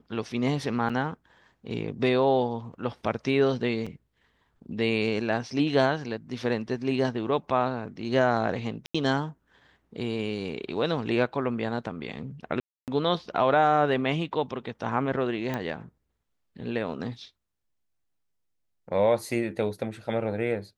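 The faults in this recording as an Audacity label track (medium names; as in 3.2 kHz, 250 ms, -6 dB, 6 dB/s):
0.890000	0.900000	dropout 6.1 ms
3.860000	3.870000	dropout 5.2 ms
8.860000	8.950000	dropout 85 ms
12.600000	12.880000	dropout 278 ms
15.540000	15.540000	pop -17 dBFS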